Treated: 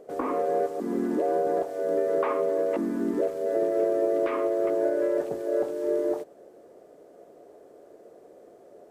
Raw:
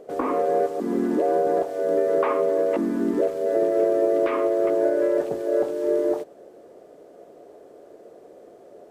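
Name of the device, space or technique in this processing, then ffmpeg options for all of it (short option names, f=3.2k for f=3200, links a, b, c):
exciter from parts: -filter_complex "[0:a]asplit=2[a][b];[b]highpass=f=4.2k:p=1,asoftclip=type=tanh:threshold=-38.5dB,highpass=f=2.2k:w=0.5412,highpass=f=2.2k:w=1.3066,volume=-9.5dB[c];[a][c]amix=inputs=2:normalize=0,volume=-4dB"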